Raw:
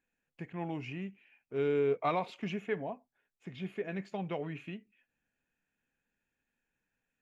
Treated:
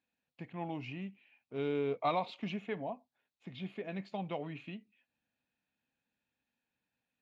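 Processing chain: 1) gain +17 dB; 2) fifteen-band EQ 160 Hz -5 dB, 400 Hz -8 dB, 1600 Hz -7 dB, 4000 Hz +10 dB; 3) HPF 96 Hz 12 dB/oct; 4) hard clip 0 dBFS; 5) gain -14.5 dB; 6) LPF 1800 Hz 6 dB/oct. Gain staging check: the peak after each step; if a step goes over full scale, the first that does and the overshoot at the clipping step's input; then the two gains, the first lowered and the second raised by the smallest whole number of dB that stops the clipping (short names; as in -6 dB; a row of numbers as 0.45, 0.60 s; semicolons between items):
-3.0, -4.5, -4.5, -4.5, -19.0, -20.5 dBFS; no overload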